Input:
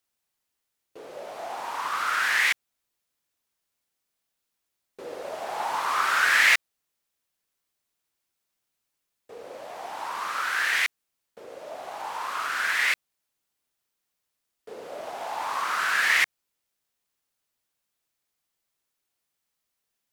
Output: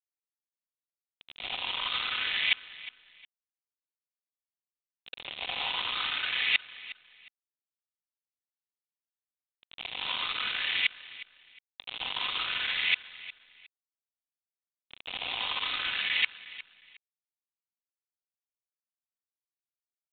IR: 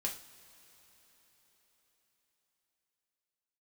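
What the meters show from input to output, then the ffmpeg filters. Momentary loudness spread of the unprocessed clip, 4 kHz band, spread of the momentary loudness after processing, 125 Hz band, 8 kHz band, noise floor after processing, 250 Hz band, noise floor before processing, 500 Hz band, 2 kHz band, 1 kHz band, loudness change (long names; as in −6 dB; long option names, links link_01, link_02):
20 LU, +3.5 dB, 18 LU, can't be measured, below −40 dB, below −85 dBFS, −4.5 dB, −82 dBFS, −13.5 dB, −7.5 dB, −12.0 dB, −5.0 dB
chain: -filter_complex "[0:a]highpass=frequency=1300:poles=1,aecho=1:1:4:0.77,areverse,acompressor=threshold=-31dB:ratio=12,areverse,aeval=exprs='val(0)*gte(abs(val(0)),0.0211)':channel_layout=same,aexciter=amount=5.3:drive=6.9:freq=2400,asoftclip=type=tanh:threshold=-7.5dB,asplit=2[link_01][link_02];[link_02]aecho=0:1:360|720:0.141|0.0353[link_03];[link_01][link_03]amix=inputs=2:normalize=0" -ar 8000 -c:a pcm_mulaw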